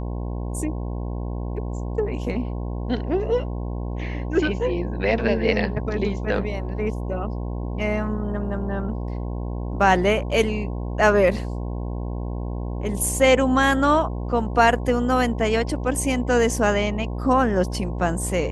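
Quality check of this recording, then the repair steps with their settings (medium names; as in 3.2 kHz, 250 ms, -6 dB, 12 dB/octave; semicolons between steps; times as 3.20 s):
buzz 60 Hz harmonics 18 -28 dBFS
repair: de-hum 60 Hz, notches 18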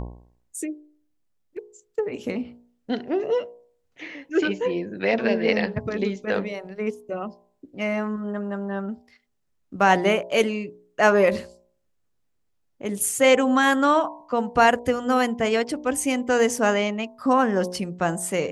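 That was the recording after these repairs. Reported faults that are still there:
nothing left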